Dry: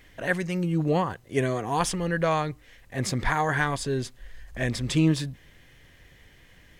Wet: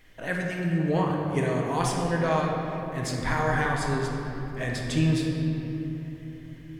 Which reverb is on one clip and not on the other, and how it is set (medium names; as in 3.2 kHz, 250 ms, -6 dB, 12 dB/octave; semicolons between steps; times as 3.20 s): simulated room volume 200 m³, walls hard, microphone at 0.57 m; trim -4.5 dB